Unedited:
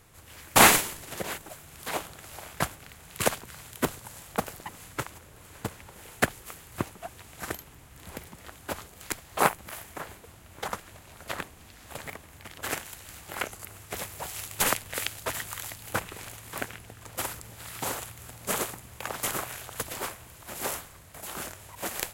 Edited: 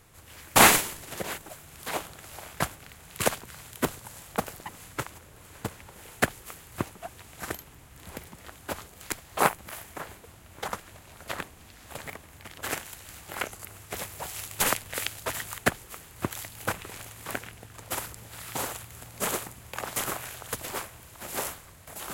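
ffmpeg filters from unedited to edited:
ffmpeg -i in.wav -filter_complex "[0:a]asplit=3[link_01][link_02][link_03];[link_01]atrim=end=15.582[link_04];[link_02]atrim=start=6.138:end=6.872[link_05];[link_03]atrim=start=15.578[link_06];[link_04][link_05]acrossfade=duration=0.004:curve1=hsin:curve2=hsin[link_07];[link_07][link_06]acrossfade=duration=0.004:curve1=hsin:curve2=hsin" out.wav

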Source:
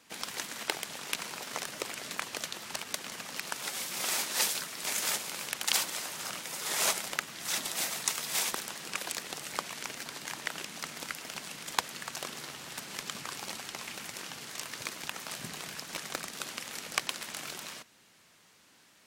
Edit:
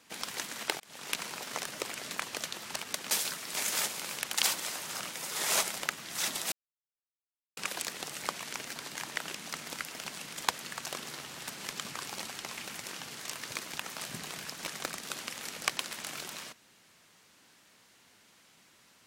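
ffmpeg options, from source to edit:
ffmpeg -i in.wav -filter_complex "[0:a]asplit=5[link_01][link_02][link_03][link_04][link_05];[link_01]atrim=end=0.8,asetpts=PTS-STARTPTS,afade=type=out:start_time=0.796:duration=0.004:curve=hsin[link_06];[link_02]atrim=start=0.8:end=3.112,asetpts=PTS-STARTPTS,afade=type=in:duration=0.3[link_07];[link_03]atrim=start=4.408:end=7.82,asetpts=PTS-STARTPTS,afade=type=out:start_time=3.408:duration=0.004:curve=hsin[link_08];[link_04]atrim=start=7.82:end=8.87,asetpts=PTS-STARTPTS,volume=0[link_09];[link_05]atrim=start=8.87,asetpts=PTS-STARTPTS,afade=type=in:duration=0.004:curve=hsin[link_10];[link_06][link_07]concat=n=2:v=0:a=1[link_11];[link_08][link_09][link_10]concat=n=3:v=0:a=1[link_12];[link_11][link_12]acrossfade=duration=0.004:curve1=hsin:curve2=hsin" out.wav

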